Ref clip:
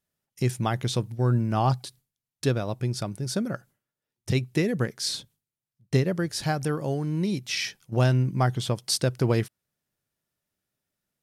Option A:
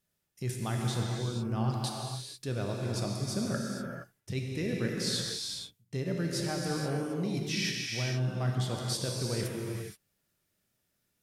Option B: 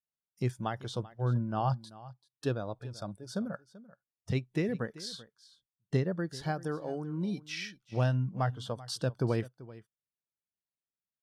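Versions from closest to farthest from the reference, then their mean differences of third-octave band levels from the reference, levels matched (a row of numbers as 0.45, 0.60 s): B, A; 5.0, 10.0 dB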